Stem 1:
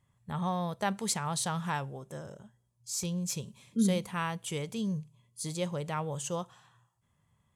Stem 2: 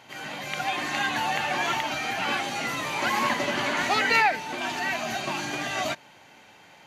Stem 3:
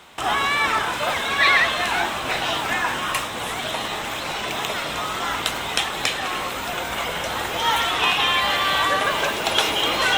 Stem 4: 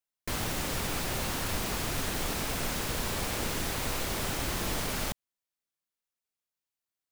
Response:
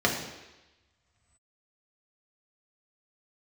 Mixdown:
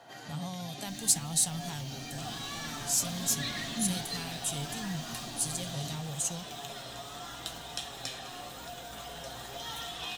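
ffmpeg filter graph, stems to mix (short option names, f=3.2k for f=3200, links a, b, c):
-filter_complex "[0:a]crystalizer=i=2.5:c=0,volume=2dB,asplit=2[a][b];[1:a]acrossover=split=410|3000[c][d][e];[d]acompressor=threshold=-39dB:ratio=6[f];[c][f][e]amix=inputs=3:normalize=0,volume=-4dB,asplit=2[g][h];[h]volume=-11.5dB[i];[2:a]adelay=2000,volume=-9.5dB,asplit=2[j][k];[k]volume=-15.5dB[l];[3:a]adelay=600,volume=-17.5dB[m];[b]apad=whole_len=302901[n];[g][n]sidechaincompress=threshold=-28dB:ratio=8:attack=16:release=327[o];[4:a]atrim=start_sample=2205[p];[i][l]amix=inputs=2:normalize=0[q];[q][p]afir=irnorm=-1:irlink=0[r];[a][o][j][m][r]amix=inputs=5:normalize=0,equalizer=f=710:t=o:w=0.39:g=8.5,acrossover=split=230|3000[s][t][u];[t]acompressor=threshold=-44dB:ratio=3[v];[s][v][u]amix=inputs=3:normalize=0,flanger=delay=6:depth=1.7:regen=61:speed=0.8:shape=triangular"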